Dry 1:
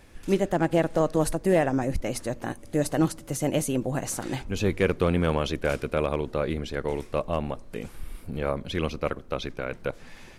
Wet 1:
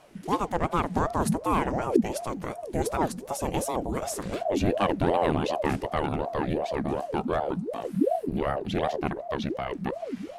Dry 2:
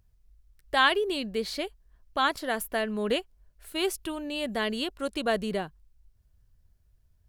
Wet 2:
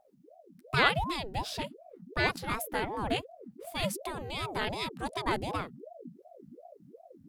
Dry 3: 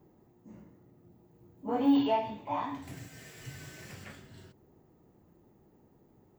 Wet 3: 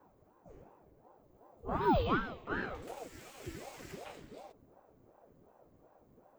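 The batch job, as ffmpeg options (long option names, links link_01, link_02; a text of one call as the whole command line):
ffmpeg -i in.wav -af "asubboost=boost=4:cutoff=110,aeval=exprs='val(0)*sin(2*PI*440*n/s+440*0.6/2.7*sin(2*PI*2.7*n/s))':channel_layout=same" out.wav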